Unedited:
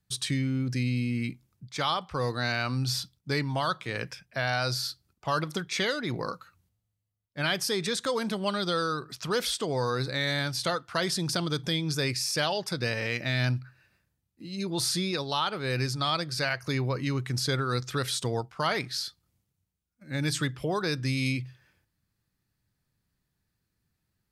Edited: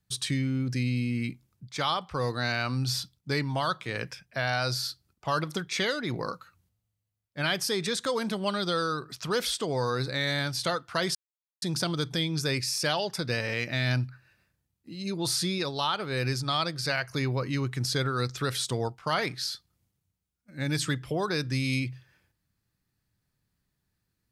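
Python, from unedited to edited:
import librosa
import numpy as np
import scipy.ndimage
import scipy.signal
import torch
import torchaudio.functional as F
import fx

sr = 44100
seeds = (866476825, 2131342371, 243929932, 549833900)

y = fx.edit(x, sr, fx.insert_silence(at_s=11.15, length_s=0.47), tone=tone)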